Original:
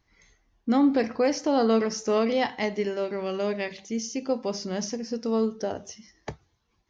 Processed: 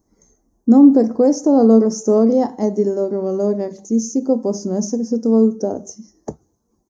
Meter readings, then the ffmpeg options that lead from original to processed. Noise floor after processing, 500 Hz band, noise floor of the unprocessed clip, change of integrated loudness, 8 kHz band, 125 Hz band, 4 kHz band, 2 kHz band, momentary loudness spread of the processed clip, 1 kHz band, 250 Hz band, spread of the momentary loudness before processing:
-67 dBFS, +9.0 dB, -72 dBFS, +10.5 dB, no reading, +11.5 dB, -4.0 dB, under -10 dB, 14 LU, +3.5 dB, +13.0 dB, 15 LU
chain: -af "firequalizer=gain_entry='entry(120,0);entry(220,12);entry(2500,-26);entry(3600,-19);entry(6500,9)':delay=0.05:min_phase=1,volume=1.19"

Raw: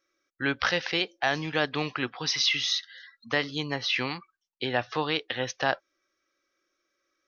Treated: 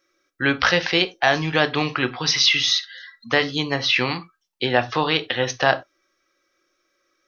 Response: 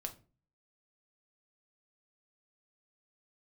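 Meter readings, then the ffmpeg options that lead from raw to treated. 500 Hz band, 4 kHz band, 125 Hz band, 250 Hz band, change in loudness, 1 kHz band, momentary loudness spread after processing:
+8.5 dB, +8.0 dB, +8.5 dB, +7.5 dB, +8.0 dB, +8.0 dB, 9 LU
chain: -filter_complex "[0:a]asplit=2[s0][s1];[1:a]atrim=start_sample=2205,atrim=end_sample=4410[s2];[s1][s2]afir=irnorm=-1:irlink=0,volume=2[s3];[s0][s3]amix=inputs=2:normalize=0"

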